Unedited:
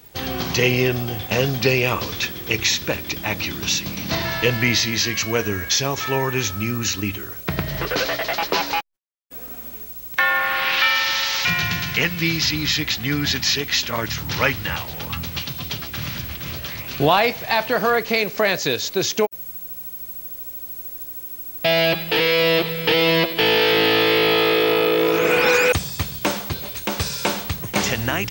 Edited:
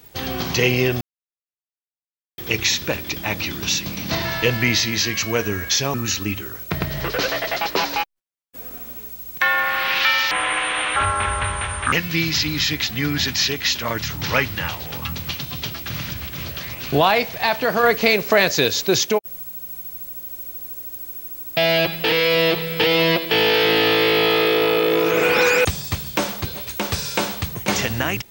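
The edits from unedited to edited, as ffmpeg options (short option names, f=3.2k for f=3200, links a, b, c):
-filter_complex "[0:a]asplit=8[a][b][c][d][e][f][g][h];[a]atrim=end=1.01,asetpts=PTS-STARTPTS,afade=t=out:st=1.006:d=0.004:c=hsin[i];[b]atrim=start=1.01:end=2.38,asetpts=PTS-STARTPTS,volume=0[j];[c]atrim=start=2.38:end=5.942,asetpts=PTS-STARTPTS,afade=t=in:d=0.004:c=hsin[k];[d]atrim=start=6.708:end=11.084[l];[e]atrim=start=11.08:end=12,asetpts=PTS-STARTPTS,asetrate=25137,aresample=44100[m];[f]atrim=start=11.996:end=17.912[n];[g]atrim=start=17.908:end=19.112,asetpts=PTS-STARTPTS,volume=3.5dB[o];[h]atrim=start=19.108[p];[i][j][k]concat=n=3:v=0:a=1[q];[q][l]acrossfade=d=0.004:c1=hsin:c2=hsin[r];[r][m]acrossfade=d=0.004:c1=hsin:c2=hsin[s];[s][n]acrossfade=d=0.004:c1=hsin:c2=hsin[t];[t][o]acrossfade=d=0.004:c1=hsin:c2=hsin[u];[u][p]acrossfade=d=0.004:c1=hsin:c2=hsin"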